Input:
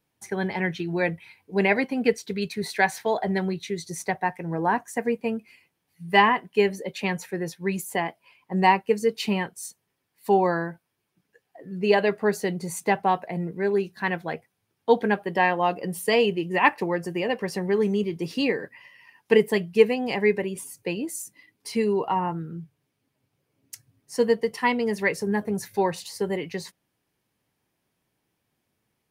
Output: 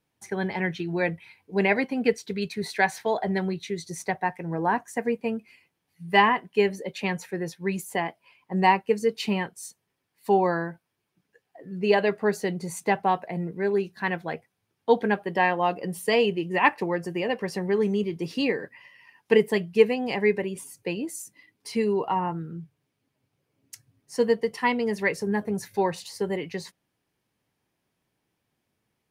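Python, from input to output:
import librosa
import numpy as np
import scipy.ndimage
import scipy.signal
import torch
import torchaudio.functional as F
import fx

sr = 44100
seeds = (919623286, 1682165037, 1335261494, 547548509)

y = fx.high_shelf(x, sr, hz=11000.0, db=-6.0)
y = F.gain(torch.from_numpy(y), -1.0).numpy()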